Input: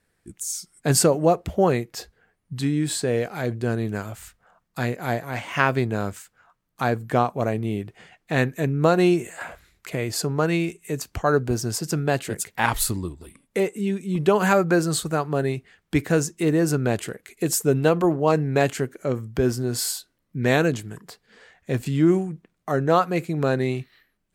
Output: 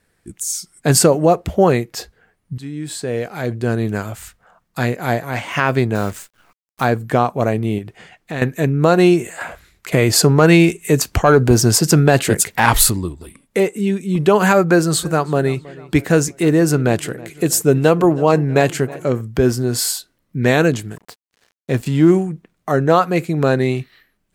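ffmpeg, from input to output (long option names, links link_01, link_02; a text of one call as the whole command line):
ffmpeg -i in.wav -filter_complex "[0:a]asettb=1/sr,asplit=3[link_01][link_02][link_03];[link_01]atrim=end=5.954[link_04];[link_02]atrim=start=5.95:end=6.85,asetpts=PTS-STARTPTS,afade=type=in:duration=0.004:curve=qsin,afade=type=out:start_time=0.896:duration=0.004:curve=qsin,acrusher=bits=8:dc=4:mix=0:aa=0.000001[link_05];[link_03]atrim=start=6.846[link_06];[link_04][link_05]acrossfade=duration=0.004:curve1=hsin:curve2=qsin[link_07];[link_07][link_06]acrossfade=duration=0.004:curve1=qsin:curve2=hsin,asettb=1/sr,asplit=3[link_08][link_09][link_10];[link_08]atrim=end=7.784[link_11];[link_09]atrim=start=7.78:end=8.42,asetpts=PTS-STARTPTS,afade=type=in:duration=0.004:curve=qsin,afade=type=out:start_time=0.636:duration=0.004:curve=qsin,acompressor=threshold=-34dB:ratio=2:attack=3.2:release=140:knee=1:detection=peak[link_12];[link_10]atrim=start=8.416[link_13];[link_11][link_12]acrossfade=duration=0.004:curve1=hsin:curve2=qsin[link_14];[link_14][link_13]acrossfade=duration=0.004:curve1=qsin:curve2=hsin,asettb=1/sr,asplit=3[link_15][link_16][link_17];[link_15]atrim=end=9.924[link_18];[link_16]atrim=start=9.92:end=12.9,asetpts=PTS-STARTPTS,afade=type=in:duration=0.004:curve=qsin,afade=type=out:start_time=2.976:duration=0.004:curve=qsin,acontrast=81[link_19];[link_17]atrim=start=12.896[link_20];[link_18][link_19]acrossfade=duration=0.004:curve1=hsin:curve2=qsin[link_21];[link_21][link_20]acrossfade=duration=0.004:curve1=qsin:curve2=hsin,asettb=1/sr,asplit=3[link_22][link_23][link_24];[link_22]atrim=end=14.604[link_25];[link_23]atrim=start=14.6:end=19.21,asetpts=PTS-STARTPTS,afade=type=in:duration=0.004:curve=qsin,afade=type=out:start_time=4.606:duration=0.004:curve=qsin,asplit=2[link_26][link_27];[link_27]adelay=321,lowpass=frequency=3200:poles=1,volume=-20dB,asplit=2[link_28][link_29];[link_29]adelay=321,lowpass=frequency=3200:poles=1,volume=0.51,asplit=2[link_30][link_31];[link_31]adelay=321,lowpass=frequency=3200:poles=1,volume=0.51,asplit=2[link_32][link_33];[link_33]adelay=321,lowpass=frequency=3200:poles=1,volume=0.51[link_34];[link_26][link_28][link_30][link_32][link_34]amix=inputs=5:normalize=0,atrim=end_sample=203301[link_35];[link_24]atrim=start=19.206[link_36];[link_25][link_35]acrossfade=duration=0.004:curve1=hsin:curve2=qsin[link_37];[link_37][link_36]acrossfade=duration=0.004:curve1=qsin:curve2=hsin,asettb=1/sr,asplit=3[link_38][link_39][link_40];[link_38]atrim=end=20.914[link_41];[link_39]atrim=start=20.91:end=22.12,asetpts=PTS-STARTPTS,afade=type=in:duration=0.004:curve=qsin,afade=type=out:start_time=1.206:duration=0.004:curve=qsin,aeval=exprs='sgn(val(0))*max(abs(val(0))-0.00473,0)':channel_layout=same[link_42];[link_40]atrim=start=22.116[link_43];[link_41][link_42]acrossfade=duration=0.004:curve1=hsin:curve2=qsin[link_44];[link_44][link_43]acrossfade=duration=0.004:curve1=qsin:curve2=hsin,asplit=2[link_45][link_46];[link_45]atrim=end=2.58,asetpts=PTS-STARTPTS,afade=type=out:start_time=2.576:duration=0.004:curve=hsin:silence=0.158489[link_47];[link_46]atrim=start=2.58,asetpts=PTS-STARTPTS,afade=type=in:duration=1.27:silence=0.158489[link_48];[link_47][link_48]concat=n=2:v=0:a=1,alimiter=level_in=7.5dB:limit=-1dB:release=50:level=0:latency=1,volume=-1dB" out.wav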